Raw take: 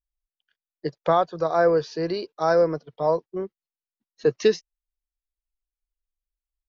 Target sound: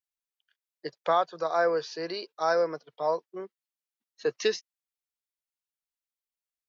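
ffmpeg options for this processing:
ffmpeg -i in.wav -af "highpass=frequency=970:poles=1" out.wav

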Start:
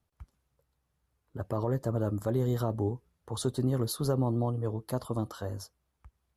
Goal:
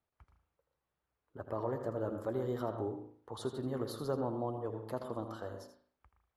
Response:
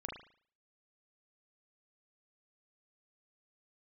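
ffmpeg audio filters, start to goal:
-filter_complex "[0:a]bass=frequency=250:gain=-11,treble=frequency=4000:gain=-12,asplit=2[link_01][link_02];[1:a]atrim=start_sample=2205,adelay=81[link_03];[link_02][link_03]afir=irnorm=-1:irlink=0,volume=-5.5dB[link_04];[link_01][link_04]amix=inputs=2:normalize=0,volume=-3.5dB"

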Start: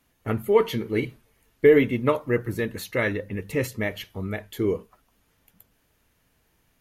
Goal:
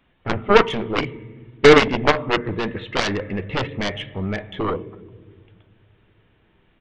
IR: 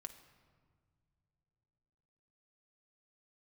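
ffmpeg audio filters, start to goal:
-filter_complex "[0:a]asplit=2[link_01][link_02];[1:a]atrim=start_sample=2205[link_03];[link_02][link_03]afir=irnorm=-1:irlink=0,volume=3dB[link_04];[link_01][link_04]amix=inputs=2:normalize=0,aresample=8000,aresample=44100,aeval=exprs='0.794*(cos(1*acos(clip(val(0)/0.794,-1,1)))-cos(1*PI/2))+0.0631*(cos(6*acos(clip(val(0)/0.794,-1,1)))-cos(6*PI/2))+0.251*(cos(7*acos(clip(val(0)/0.794,-1,1)))-cos(7*PI/2))':channel_layout=same"

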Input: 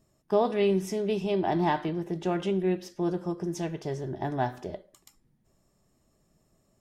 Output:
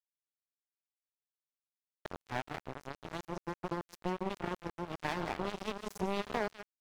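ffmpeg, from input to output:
ffmpeg -i in.wav -filter_complex "[0:a]areverse,lowshelf=frequency=75:gain=8.5,asplit=2[link_01][link_02];[link_02]adelay=151.6,volume=-10dB,highshelf=frequency=4000:gain=-3.41[link_03];[link_01][link_03]amix=inputs=2:normalize=0,acompressor=threshold=-35dB:ratio=2.5,bandreject=frequency=139.5:width_type=h:width=4,bandreject=frequency=279:width_type=h:width=4,bandreject=frequency=418.5:width_type=h:width=4,bandreject=frequency=558:width_type=h:width=4,bandreject=frequency=697.5:width_type=h:width=4,bandreject=frequency=837:width_type=h:width=4,bandreject=frequency=976.5:width_type=h:width=4,bandreject=frequency=1116:width_type=h:width=4,bandreject=frequency=1255.5:width_type=h:width=4,bandreject=frequency=1395:width_type=h:width=4,bandreject=frequency=1534.5:width_type=h:width=4,bandreject=frequency=1674:width_type=h:width=4,bandreject=frequency=1813.5:width_type=h:width=4,bandreject=frequency=1953:width_type=h:width=4,bandreject=frequency=2092.5:width_type=h:width=4,bandreject=frequency=2232:width_type=h:width=4,bandreject=frequency=2371.5:width_type=h:width=4,bandreject=frequency=2511:width_type=h:width=4,bandreject=frequency=2650.5:width_type=h:width=4,bandreject=frequency=2790:width_type=h:width=4,bandreject=frequency=2929.5:width_type=h:width=4,bandreject=frequency=3069:width_type=h:width=4,bandreject=frequency=3208.5:width_type=h:width=4,bandreject=frequency=3348:width_type=h:width=4,bandreject=frequency=3487.5:width_type=h:width=4,bandreject=frequency=3627:width_type=h:width=4,bandreject=frequency=3766.5:width_type=h:width=4,bandreject=frequency=3906:width_type=h:width=4,bandreject=frequency=4045.5:width_type=h:width=4,asplit=2[link_04][link_05];[link_05]alimiter=level_in=10dB:limit=-24dB:level=0:latency=1:release=15,volume=-10dB,volume=-1dB[link_06];[link_04][link_06]amix=inputs=2:normalize=0,aeval=exprs='sgn(val(0))*max(abs(val(0))-0.0376,0)':channel_layout=same,volume=6.5dB" out.wav

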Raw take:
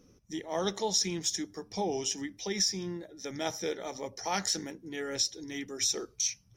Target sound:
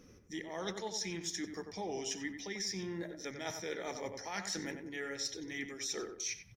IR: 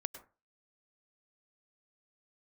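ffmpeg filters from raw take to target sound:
-filter_complex "[0:a]equalizer=frequency=1900:width=1.7:gain=8,areverse,acompressor=threshold=-39dB:ratio=6,areverse,asplit=2[link_01][link_02];[link_02]adelay=93,lowpass=frequency=1800:poles=1,volume=-6.5dB,asplit=2[link_03][link_04];[link_04]adelay=93,lowpass=frequency=1800:poles=1,volume=0.38,asplit=2[link_05][link_06];[link_06]adelay=93,lowpass=frequency=1800:poles=1,volume=0.38,asplit=2[link_07][link_08];[link_08]adelay=93,lowpass=frequency=1800:poles=1,volume=0.38[link_09];[link_01][link_03][link_05][link_07][link_09]amix=inputs=5:normalize=0,volume=1.5dB"

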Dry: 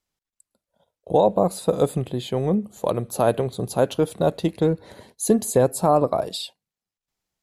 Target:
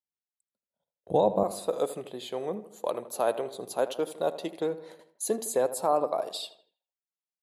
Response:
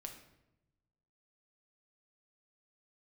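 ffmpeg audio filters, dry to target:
-filter_complex "[0:a]agate=range=-16dB:threshold=-42dB:ratio=16:detection=peak,asetnsamples=nb_out_samples=441:pad=0,asendcmd='1.43 highpass f 410',highpass=82,asplit=2[link_01][link_02];[link_02]adelay=80,lowpass=frequency=2400:poles=1,volume=-13.5dB,asplit=2[link_03][link_04];[link_04]adelay=80,lowpass=frequency=2400:poles=1,volume=0.54,asplit=2[link_05][link_06];[link_06]adelay=80,lowpass=frequency=2400:poles=1,volume=0.54,asplit=2[link_07][link_08];[link_08]adelay=80,lowpass=frequency=2400:poles=1,volume=0.54,asplit=2[link_09][link_10];[link_10]adelay=80,lowpass=frequency=2400:poles=1,volume=0.54[link_11];[link_01][link_03][link_05][link_07][link_09][link_11]amix=inputs=6:normalize=0,volume=-6dB"

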